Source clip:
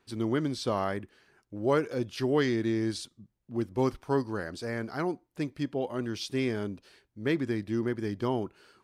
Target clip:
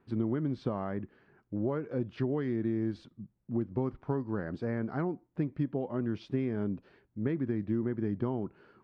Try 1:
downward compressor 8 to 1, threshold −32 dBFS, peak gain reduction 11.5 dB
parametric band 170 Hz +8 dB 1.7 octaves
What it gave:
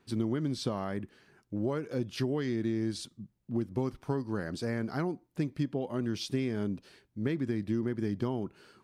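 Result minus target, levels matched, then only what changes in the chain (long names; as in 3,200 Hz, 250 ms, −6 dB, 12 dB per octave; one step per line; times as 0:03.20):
2,000 Hz band +3.0 dB
add after downward compressor: low-pass filter 1,700 Hz 12 dB per octave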